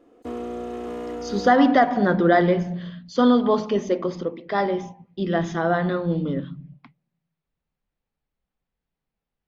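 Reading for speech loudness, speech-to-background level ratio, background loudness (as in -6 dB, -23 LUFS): -21.5 LUFS, 11.5 dB, -33.0 LUFS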